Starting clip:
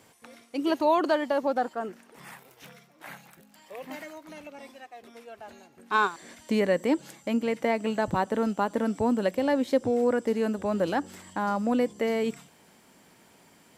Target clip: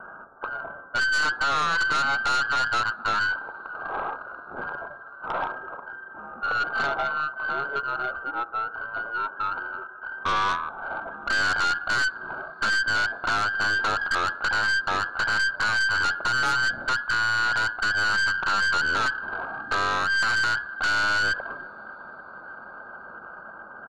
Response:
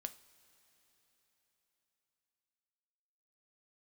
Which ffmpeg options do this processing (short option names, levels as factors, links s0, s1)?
-filter_complex "[0:a]acompressor=threshold=0.0316:ratio=5,asetrate=36028,aresample=44100,atempo=1.22405,aeval=exprs='0.0376*(abs(mod(val(0)/0.0376+3,4)-2)-1)':c=same,lowpass=f=2500:t=q:w=0.5098,lowpass=f=2500:t=q:w=0.6013,lowpass=f=2500:t=q:w=0.9,lowpass=f=2500:t=q:w=2.563,afreqshift=-2900,asoftclip=type=tanh:threshold=0.0398,asplit=2[s0][s1];[1:a]atrim=start_sample=2205,highshelf=f=7300:g=-8[s2];[s1][s2]afir=irnorm=-1:irlink=0,volume=1.68[s3];[s0][s3]amix=inputs=2:normalize=0,aeval=exprs='0.0841*(cos(1*acos(clip(val(0)/0.0841,-1,1)))-cos(1*PI/2))+0.0106*(cos(4*acos(clip(val(0)/0.0841,-1,1)))-cos(4*PI/2))+0.0188*(cos(5*acos(clip(val(0)/0.0841,-1,1)))-cos(5*PI/2))':c=same,asetrate=25442,aresample=44100,volume=1.68"